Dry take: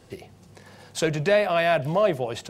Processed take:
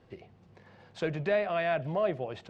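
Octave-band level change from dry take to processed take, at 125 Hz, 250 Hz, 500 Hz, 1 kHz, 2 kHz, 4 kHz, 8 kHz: −7.5 dB, −7.5 dB, −7.5 dB, −8.0 dB, −8.5 dB, −12.5 dB, below −20 dB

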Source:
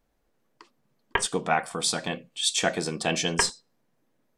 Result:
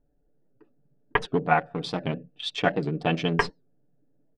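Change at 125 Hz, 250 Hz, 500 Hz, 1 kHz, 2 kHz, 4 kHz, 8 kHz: +6.0, +4.0, +2.5, +2.5, +0.5, −6.5, −23.0 decibels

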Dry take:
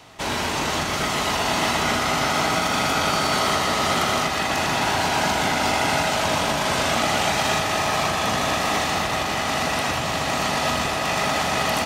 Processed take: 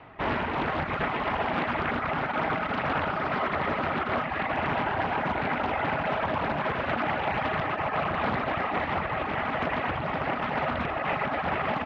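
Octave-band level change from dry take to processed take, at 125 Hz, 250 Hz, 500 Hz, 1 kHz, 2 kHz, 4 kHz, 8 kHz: −5.0 dB, −5.0 dB, −5.0 dB, −5.5 dB, −6.0 dB, −17.0 dB, below −35 dB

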